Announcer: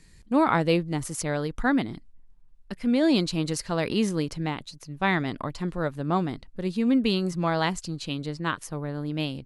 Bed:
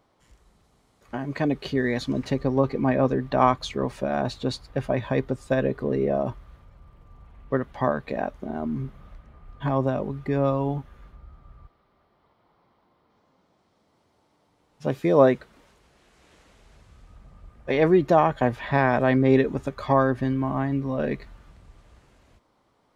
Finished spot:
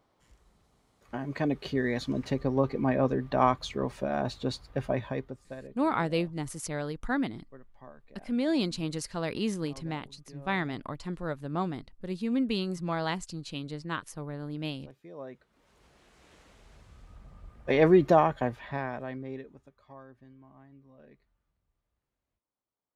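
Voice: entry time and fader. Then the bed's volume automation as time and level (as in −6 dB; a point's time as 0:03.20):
5.45 s, −6.0 dB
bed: 0:04.95 −4.5 dB
0:05.85 −26.5 dB
0:15.25 −26.5 dB
0:15.83 −1.5 dB
0:18.08 −1.5 dB
0:19.84 −29.5 dB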